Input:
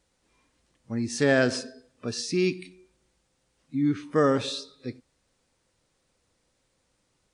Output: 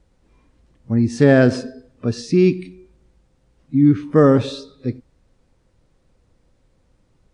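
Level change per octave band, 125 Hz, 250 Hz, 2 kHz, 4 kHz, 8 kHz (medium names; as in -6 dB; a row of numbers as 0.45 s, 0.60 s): +14.0 dB, +11.0 dB, +3.0 dB, -0.5 dB, no reading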